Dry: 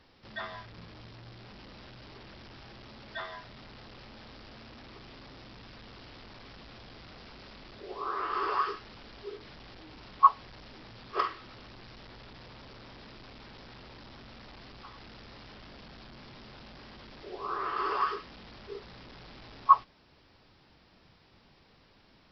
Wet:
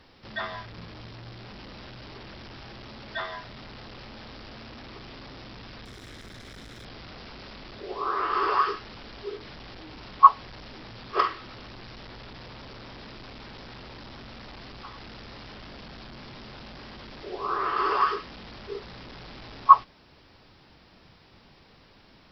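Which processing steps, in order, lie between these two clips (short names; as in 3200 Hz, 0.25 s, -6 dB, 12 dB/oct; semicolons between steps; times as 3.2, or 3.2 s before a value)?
5.85–6.85 minimum comb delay 0.54 ms; gain +6 dB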